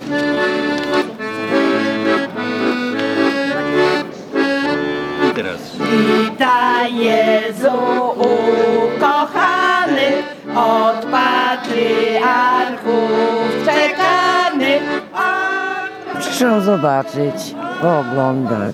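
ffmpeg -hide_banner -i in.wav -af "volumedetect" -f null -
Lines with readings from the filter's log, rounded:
mean_volume: -15.7 dB
max_volume: -2.4 dB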